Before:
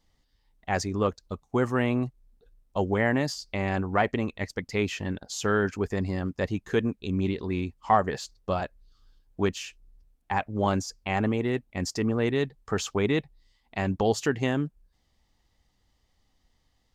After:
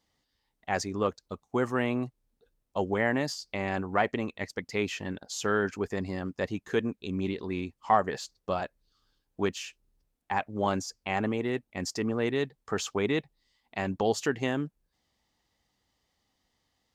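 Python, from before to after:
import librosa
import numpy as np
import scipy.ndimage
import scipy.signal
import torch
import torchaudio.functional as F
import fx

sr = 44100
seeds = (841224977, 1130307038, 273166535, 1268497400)

y = fx.highpass(x, sr, hz=190.0, slope=6)
y = F.gain(torch.from_numpy(y), -1.5).numpy()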